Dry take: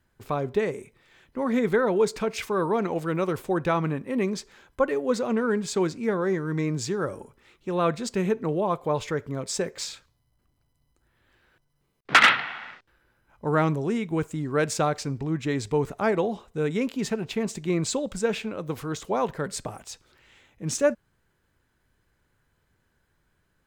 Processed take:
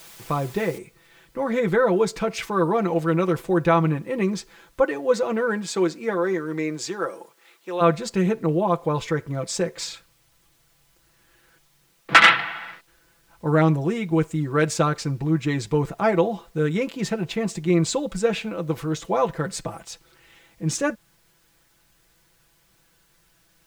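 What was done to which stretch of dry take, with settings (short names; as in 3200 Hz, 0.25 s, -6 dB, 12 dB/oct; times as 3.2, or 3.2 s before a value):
0.78 noise floor step -47 dB -65 dB
4.81–7.8 HPF 170 Hz -> 550 Hz
whole clip: high shelf 6400 Hz -4 dB; comb 6 ms, depth 70%; gain +2 dB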